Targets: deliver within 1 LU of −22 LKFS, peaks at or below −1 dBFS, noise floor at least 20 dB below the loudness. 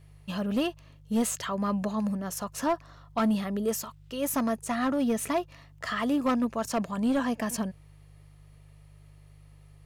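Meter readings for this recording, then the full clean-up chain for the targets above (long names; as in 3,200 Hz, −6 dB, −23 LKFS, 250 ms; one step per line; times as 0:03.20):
share of clipped samples 0.8%; peaks flattened at −20.5 dBFS; mains hum 50 Hz; hum harmonics up to 150 Hz; level of the hum −51 dBFS; integrated loudness −29.5 LKFS; sample peak −20.5 dBFS; target loudness −22.0 LKFS
→ clipped peaks rebuilt −20.5 dBFS
hum removal 50 Hz, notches 3
level +7.5 dB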